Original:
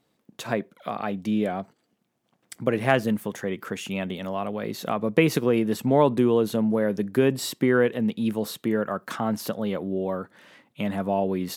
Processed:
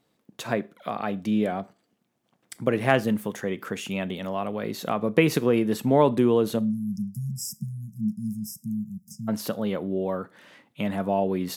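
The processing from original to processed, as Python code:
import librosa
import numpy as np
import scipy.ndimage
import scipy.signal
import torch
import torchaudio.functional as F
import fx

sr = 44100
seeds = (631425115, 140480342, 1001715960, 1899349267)

y = fx.spec_erase(x, sr, start_s=6.59, length_s=2.69, low_hz=220.0, high_hz=4900.0)
y = fx.rev_schroeder(y, sr, rt60_s=0.32, comb_ms=26, drr_db=19.0)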